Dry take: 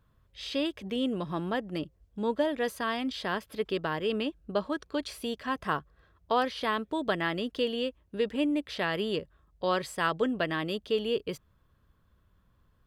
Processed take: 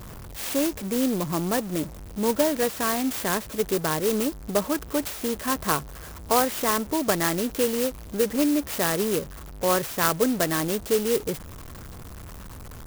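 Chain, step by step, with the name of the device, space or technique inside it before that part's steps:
early CD player with a faulty converter (converter with a step at zero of −39.5 dBFS; converter with an unsteady clock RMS 0.092 ms)
level +5 dB

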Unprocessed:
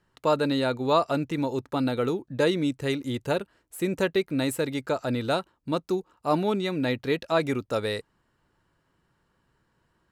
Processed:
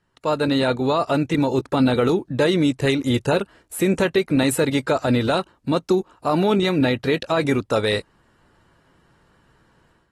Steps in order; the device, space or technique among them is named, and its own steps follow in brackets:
low-bitrate web radio (automatic gain control gain up to 11 dB; brickwall limiter −10.5 dBFS, peak gain reduction 8.5 dB; AAC 32 kbit/s 44,100 Hz)

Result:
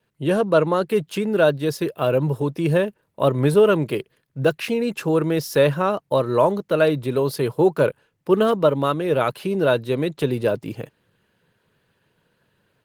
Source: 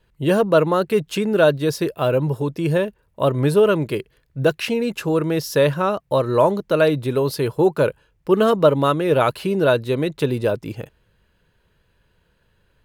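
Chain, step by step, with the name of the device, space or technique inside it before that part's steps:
video call (high-pass filter 110 Hz 24 dB per octave; automatic gain control gain up to 4 dB; level −2.5 dB; Opus 20 kbit/s 48,000 Hz)

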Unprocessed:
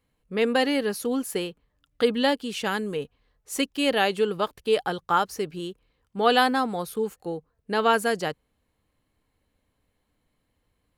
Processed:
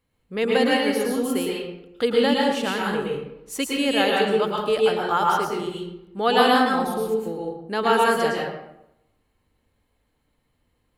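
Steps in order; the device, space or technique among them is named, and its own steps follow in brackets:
bathroom (convolution reverb RT60 0.85 s, pre-delay 104 ms, DRR −2.5 dB)
level −1 dB

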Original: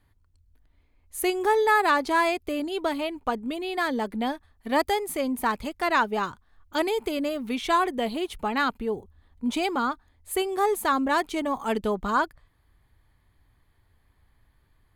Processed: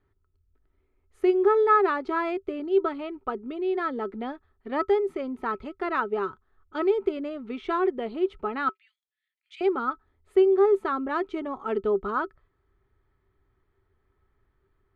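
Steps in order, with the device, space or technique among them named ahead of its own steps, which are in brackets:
0:08.69–0:09.61: Butterworth high-pass 1,900 Hz 48 dB per octave
inside a cardboard box (low-pass filter 2,600 Hz 12 dB per octave; hollow resonant body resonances 390/1,300 Hz, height 18 dB, ringing for 80 ms)
level −7 dB

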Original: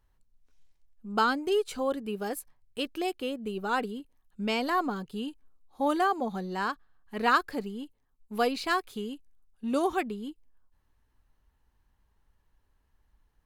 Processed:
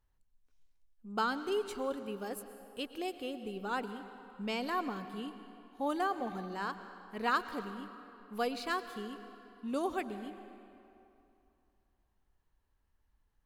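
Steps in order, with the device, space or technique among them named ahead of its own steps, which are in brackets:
saturated reverb return (on a send at −10 dB: convolution reverb RT60 2.7 s, pre-delay 103 ms + soft clipping −22 dBFS, distortion −17 dB)
on the sum: level −7 dB

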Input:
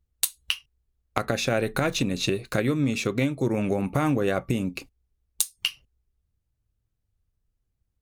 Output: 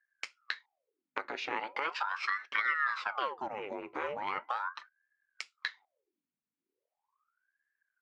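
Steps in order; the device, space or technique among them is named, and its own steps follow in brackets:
voice changer toy (ring modulator whose carrier an LFO sweeps 910 Hz, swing 85%, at 0.39 Hz; loudspeaker in its box 490–4,300 Hz, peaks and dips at 670 Hz −8 dB, 2,200 Hz +4 dB, 3,700 Hz −6 dB)
0:01.57–0:02.75: high-pass filter 250 Hz 12 dB per octave
level −5 dB

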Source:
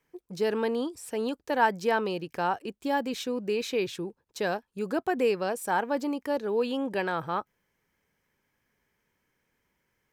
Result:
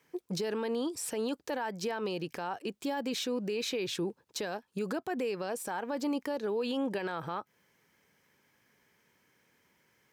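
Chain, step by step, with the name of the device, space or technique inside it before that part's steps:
broadcast voice chain (high-pass filter 110 Hz 12 dB per octave; de-essing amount 80%; downward compressor 5 to 1, threshold −33 dBFS, peak gain reduction 14 dB; parametric band 4,600 Hz +3 dB 1.5 octaves; brickwall limiter −31.5 dBFS, peak gain reduction 10 dB)
level +6 dB

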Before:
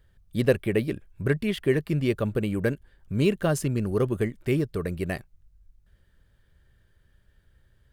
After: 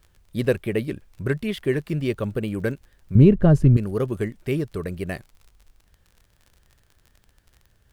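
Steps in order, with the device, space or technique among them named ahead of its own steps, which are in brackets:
vinyl LP (tape wow and flutter; surface crackle 43 per second −40 dBFS; pink noise bed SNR 43 dB)
0:03.15–0:03.77: spectral tilt −4.5 dB per octave

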